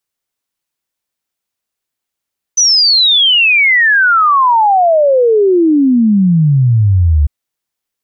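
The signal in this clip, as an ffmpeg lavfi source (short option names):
-f lavfi -i "aevalsrc='0.501*clip(min(t,4.7-t)/0.01,0,1)*sin(2*PI*6100*4.7/log(70/6100)*(exp(log(70/6100)*t/4.7)-1))':d=4.7:s=44100"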